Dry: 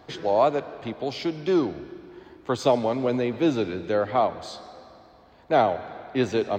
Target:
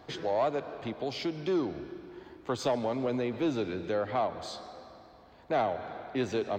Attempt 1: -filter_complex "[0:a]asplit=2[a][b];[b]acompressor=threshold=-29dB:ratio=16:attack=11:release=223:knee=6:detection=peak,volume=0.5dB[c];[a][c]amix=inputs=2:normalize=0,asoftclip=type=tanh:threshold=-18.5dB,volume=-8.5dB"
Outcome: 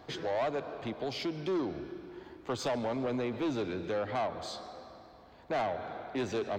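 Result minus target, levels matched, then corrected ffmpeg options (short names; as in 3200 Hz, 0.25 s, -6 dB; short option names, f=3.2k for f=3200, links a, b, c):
soft clip: distortion +9 dB
-filter_complex "[0:a]asplit=2[a][b];[b]acompressor=threshold=-29dB:ratio=16:attack=11:release=223:knee=6:detection=peak,volume=0.5dB[c];[a][c]amix=inputs=2:normalize=0,asoftclip=type=tanh:threshold=-10.5dB,volume=-8.5dB"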